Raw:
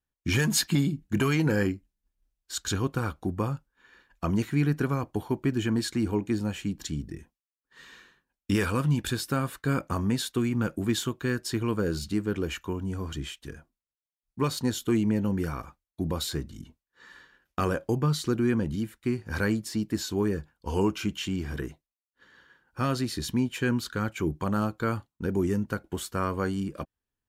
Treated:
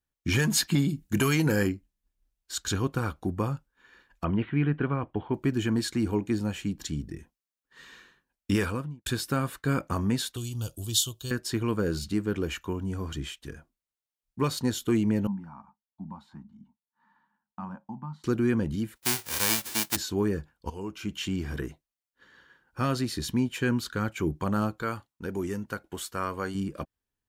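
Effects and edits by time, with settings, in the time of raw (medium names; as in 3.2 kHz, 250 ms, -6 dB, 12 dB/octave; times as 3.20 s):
0.88–1.68 s: treble shelf 3.8 kHz -> 7 kHz +11 dB
4.24–5.34 s: elliptic low-pass 3.2 kHz, stop band 60 dB
8.54–9.06 s: studio fade out
10.36–11.31 s: FFT filter 110 Hz 0 dB, 200 Hz -16 dB, 670 Hz -9 dB, 1.2 kHz -15 dB, 2.1 kHz -25 dB, 3 kHz +6 dB, 9.5 kHz +10 dB
15.27–18.24 s: two resonant band-passes 430 Hz, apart 2.1 oct
18.95–19.95 s: formants flattened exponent 0.1
20.70–21.21 s: fade in quadratic, from -14 dB
24.82–26.55 s: bass shelf 440 Hz -8 dB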